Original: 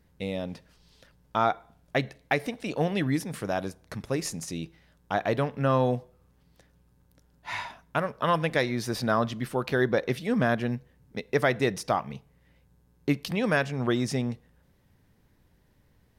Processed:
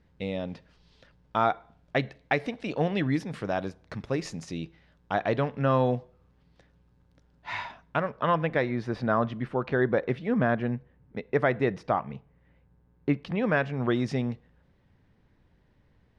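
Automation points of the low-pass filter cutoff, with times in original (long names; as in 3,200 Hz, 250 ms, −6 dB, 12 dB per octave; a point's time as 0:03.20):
0:07.81 4,200 Hz
0:08.51 2,100 Hz
0:13.37 2,100 Hz
0:14.12 3,600 Hz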